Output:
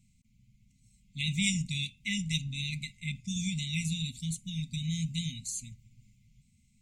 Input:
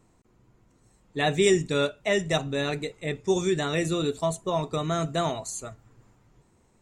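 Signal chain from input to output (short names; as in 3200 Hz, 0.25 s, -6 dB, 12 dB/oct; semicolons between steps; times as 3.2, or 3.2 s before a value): brick-wall FIR band-stop 250–2000 Hz; gain -1.5 dB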